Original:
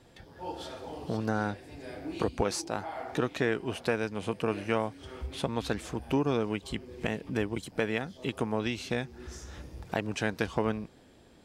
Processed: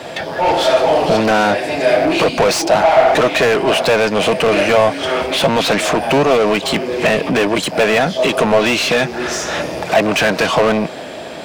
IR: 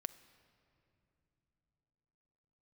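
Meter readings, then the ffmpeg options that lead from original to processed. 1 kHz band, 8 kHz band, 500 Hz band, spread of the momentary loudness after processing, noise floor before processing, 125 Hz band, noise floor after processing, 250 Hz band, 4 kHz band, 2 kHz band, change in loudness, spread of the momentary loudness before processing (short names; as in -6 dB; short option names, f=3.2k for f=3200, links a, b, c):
+21.0 dB, +19.0 dB, +20.0 dB, 6 LU, -57 dBFS, +10.5 dB, -29 dBFS, +14.0 dB, +22.5 dB, +20.0 dB, +18.5 dB, 12 LU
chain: -filter_complex "[0:a]acrossover=split=120[a][b];[a]acompressor=threshold=-54dB:ratio=6[c];[c][b]amix=inputs=2:normalize=0,asplit=2[d][e];[e]highpass=f=720:p=1,volume=35dB,asoftclip=type=tanh:threshold=-10.5dB[f];[d][f]amix=inputs=2:normalize=0,lowpass=f=4k:p=1,volume=-6dB,equalizer=f=160:t=o:w=0.33:g=6,equalizer=f=630:t=o:w=0.33:g=11,equalizer=f=2.5k:t=o:w=0.33:g=3,acrusher=bits=10:mix=0:aa=0.000001,volume=3.5dB"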